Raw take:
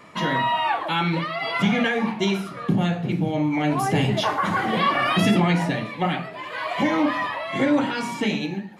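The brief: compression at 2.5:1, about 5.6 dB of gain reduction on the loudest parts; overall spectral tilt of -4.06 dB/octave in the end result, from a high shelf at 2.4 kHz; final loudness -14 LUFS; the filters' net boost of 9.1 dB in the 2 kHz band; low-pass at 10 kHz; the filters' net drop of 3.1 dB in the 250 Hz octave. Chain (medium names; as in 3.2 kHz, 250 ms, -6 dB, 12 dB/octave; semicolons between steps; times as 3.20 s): low-pass 10 kHz; peaking EQ 250 Hz -4.5 dB; peaking EQ 2 kHz +7.5 dB; treble shelf 2.4 kHz +7 dB; compression 2.5:1, threshold -21 dBFS; trim +8.5 dB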